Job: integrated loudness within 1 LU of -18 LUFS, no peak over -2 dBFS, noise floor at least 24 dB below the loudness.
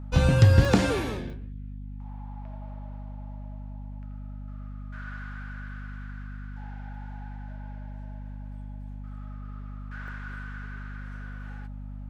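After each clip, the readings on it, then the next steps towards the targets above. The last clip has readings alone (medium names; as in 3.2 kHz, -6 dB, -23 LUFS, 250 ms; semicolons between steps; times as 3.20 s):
dropouts 3; longest dropout 1.1 ms; hum 50 Hz; highest harmonic 250 Hz; hum level -36 dBFS; loudness -30.0 LUFS; peak level -6.0 dBFS; loudness target -18.0 LUFS
-> interpolate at 0.65/1.30/10.08 s, 1.1 ms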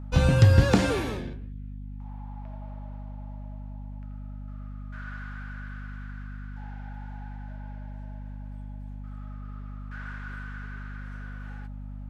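dropouts 0; hum 50 Hz; highest harmonic 250 Hz; hum level -36 dBFS
-> de-hum 50 Hz, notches 5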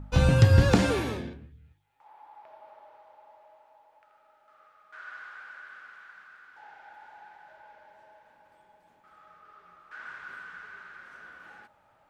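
hum not found; loudness -23.5 LUFS; peak level -6.0 dBFS; loudness target -18.0 LUFS
-> trim +5.5 dB; peak limiter -2 dBFS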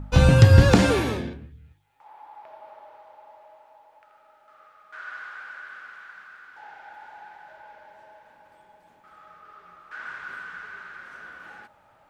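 loudness -18.5 LUFS; peak level -2.0 dBFS; noise floor -59 dBFS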